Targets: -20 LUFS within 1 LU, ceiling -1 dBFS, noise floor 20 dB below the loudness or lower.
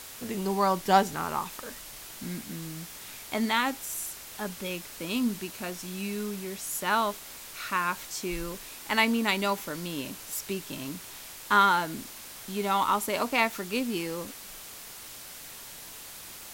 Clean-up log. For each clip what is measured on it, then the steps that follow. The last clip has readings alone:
noise floor -45 dBFS; noise floor target -50 dBFS; loudness -29.5 LUFS; peak -7.5 dBFS; loudness target -20.0 LUFS
-> noise print and reduce 6 dB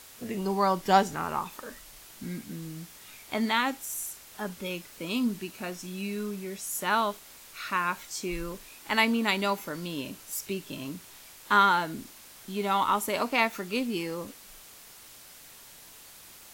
noise floor -50 dBFS; loudness -29.5 LUFS; peak -7.5 dBFS; loudness target -20.0 LUFS
-> gain +9.5 dB; limiter -1 dBFS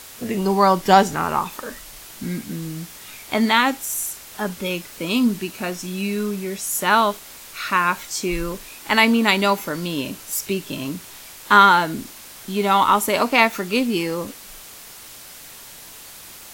loudness -20.0 LUFS; peak -1.0 dBFS; noise floor -41 dBFS

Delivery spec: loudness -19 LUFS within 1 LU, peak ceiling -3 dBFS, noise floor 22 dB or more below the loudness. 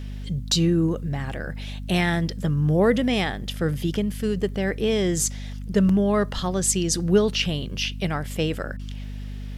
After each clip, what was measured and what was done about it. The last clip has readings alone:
dropouts 1; longest dropout 3.6 ms; hum 50 Hz; harmonics up to 250 Hz; hum level -31 dBFS; loudness -23.5 LUFS; peak -7.5 dBFS; loudness target -19.0 LUFS
-> interpolate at 5.89, 3.6 ms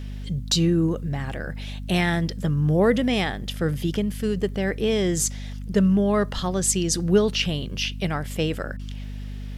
dropouts 0; hum 50 Hz; harmonics up to 250 Hz; hum level -31 dBFS
-> de-hum 50 Hz, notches 5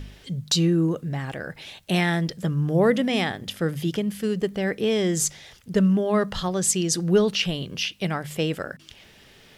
hum none; loudness -24.0 LUFS; peak -8.5 dBFS; loudness target -19.0 LUFS
-> gain +5 dB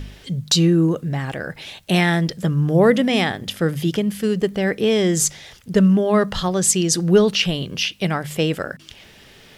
loudness -19.0 LUFS; peak -3.5 dBFS; noise floor -47 dBFS

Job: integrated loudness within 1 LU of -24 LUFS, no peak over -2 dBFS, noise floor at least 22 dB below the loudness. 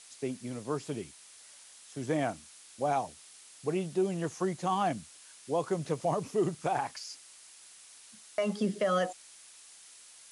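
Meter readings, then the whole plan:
noise floor -54 dBFS; noise floor target -55 dBFS; loudness -33.0 LUFS; peak -19.5 dBFS; loudness target -24.0 LUFS
-> denoiser 6 dB, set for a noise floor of -54 dBFS; gain +9 dB

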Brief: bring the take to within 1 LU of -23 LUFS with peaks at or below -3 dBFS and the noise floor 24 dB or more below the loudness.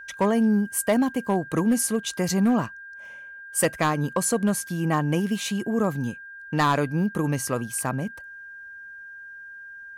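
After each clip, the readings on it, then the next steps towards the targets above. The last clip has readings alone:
clipped 0.5%; flat tops at -14.5 dBFS; steady tone 1600 Hz; tone level -39 dBFS; loudness -24.5 LUFS; peak -14.5 dBFS; loudness target -23.0 LUFS
-> clip repair -14.5 dBFS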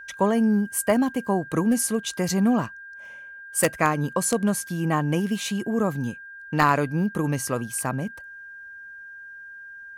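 clipped 0.0%; steady tone 1600 Hz; tone level -39 dBFS
-> notch 1600 Hz, Q 30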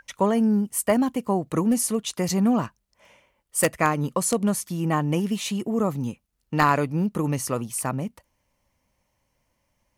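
steady tone none; loudness -24.0 LUFS; peak -5.5 dBFS; loudness target -23.0 LUFS
-> gain +1 dB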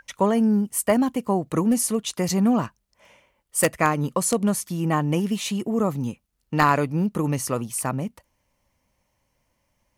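loudness -23.0 LUFS; peak -4.5 dBFS; noise floor -73 dBFS

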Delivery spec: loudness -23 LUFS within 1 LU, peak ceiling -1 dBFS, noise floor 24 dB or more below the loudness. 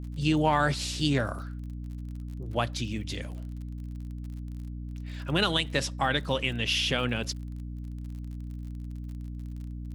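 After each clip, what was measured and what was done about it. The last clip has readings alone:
ticks 41/s; hum 60 Hz; harmonics up to 300 Hz; hum level -35 dBFS; loudness -31.0 LUFS; peak -11.5 dBFS; loudness target -23.0 LUFS
-> de-click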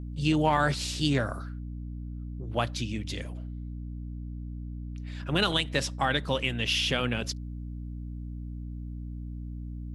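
ticks 0/s; hum 60 Hz; harmonics up to 300 Hz; hum level -35 dBFS
-> de-hum 60 Hz, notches 5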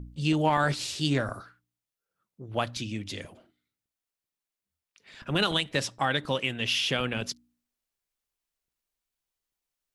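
hum none; loudness -28.5 LUFS; peak -11.5 dBFS; loudness target -23.0 LUFS
-> gain +5.5 dB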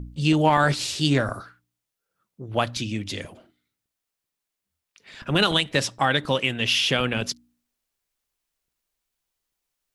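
loudness -23.0 LUFS; peak -6.0 dBFS; noise floor -84 dBFS

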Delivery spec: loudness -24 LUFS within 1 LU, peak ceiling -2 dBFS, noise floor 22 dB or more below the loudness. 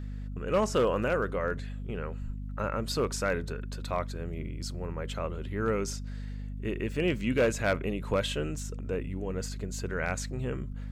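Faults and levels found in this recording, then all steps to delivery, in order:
clipped 0.3%; flat tops at -19.0 dBFS; hum 50 Hz; harmonics up to 250 Hz; hum level -35 dBFS; loudness -32.0 LUFS; peak -19.0 dBFS; loudness target -24.0 LUFS
-> clip repair -19 dBFS; notches 50/100/150/200/250 Hz; gain +8 dB

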